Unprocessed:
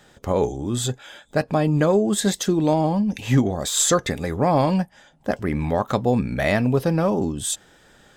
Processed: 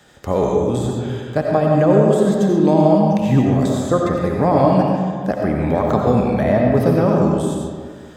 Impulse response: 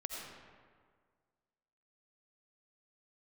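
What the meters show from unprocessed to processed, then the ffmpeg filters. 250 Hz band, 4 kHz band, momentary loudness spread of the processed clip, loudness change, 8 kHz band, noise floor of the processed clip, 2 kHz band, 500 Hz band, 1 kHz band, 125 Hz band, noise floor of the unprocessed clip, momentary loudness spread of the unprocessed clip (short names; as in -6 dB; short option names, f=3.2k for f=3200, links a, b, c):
+6.0 dB, -7.0 dB, 9 LU, +5.0 dB, -12.5 dB, -36 dBFS, -1.0 dB, +6.5 dB, +5.0 dB, +5.0 dB, -55 dBFS, 8 LU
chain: -filter_complex "[0:a]highpass=41,acrossover=split=650|1300[a][b][c];[c]acompressor=threshold=-39dB:ratio=12[d];[a][b][d]amix=inputs=3:normalize=0[e];[1:a]atrim=start_sample=2205,asetrate=43218,aresample=44100[f];[e][f]afir=irnorm=-1:irlink=0,volume=5.5dB"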